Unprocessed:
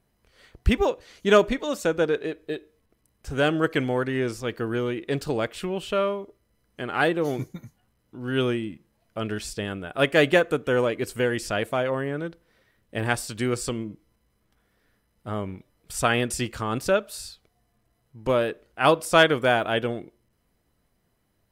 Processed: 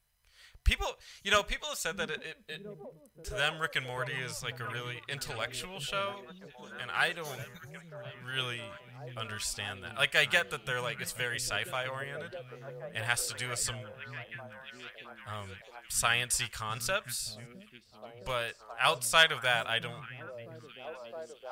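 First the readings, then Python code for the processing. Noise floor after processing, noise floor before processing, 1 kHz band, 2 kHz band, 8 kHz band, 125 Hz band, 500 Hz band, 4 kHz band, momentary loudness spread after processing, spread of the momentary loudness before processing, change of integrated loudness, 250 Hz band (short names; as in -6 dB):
-59 dBFS, -71 dBFS, -7.0 dB, -3.0 dB, +1.5 dB, -10.0 dB, -14.5 dB, 0.0 dB, 19 LU, 16 LU, -7.0 dB, -20.0 dB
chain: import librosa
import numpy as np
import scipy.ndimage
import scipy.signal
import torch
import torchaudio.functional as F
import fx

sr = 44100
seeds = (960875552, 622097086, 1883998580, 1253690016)

y = fx.tone_stack(x, sr, knobs='10-0-10')
y = fx.echo_stepped(y, sr, ms=664, hz=170.0, octaves=0.7, feedback_pct=70, wet_db=-1.5)
y = y * librosa.db_to_amplitude(2.0)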